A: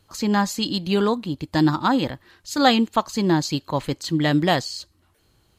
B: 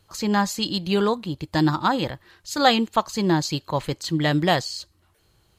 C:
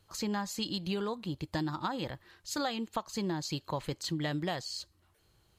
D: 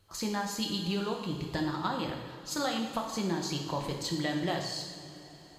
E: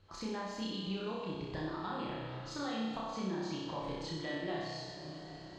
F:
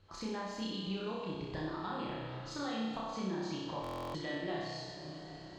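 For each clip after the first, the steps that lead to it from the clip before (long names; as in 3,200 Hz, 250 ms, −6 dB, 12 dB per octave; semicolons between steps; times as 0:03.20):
parametric band 260 Hz −8 dB 0.33 octaves
downward compressor 10 to 1, threshold −24 dBFS, peak gain reduction 13.5 dB; level −6 dB
convolution reverb, pre-delay 3 ms, DRR 1 dB
downward compressor 2 to 1, threshold −47 dBFS, peak gain reduction 11 dB; high-frequency loss of the air 150 metres; on a send: flutter between parallel walls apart 5.4 metres, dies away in 0.81 s; on the sum: level +1 dB
buffer that repeats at 0:03.82, samples 1,024, times 13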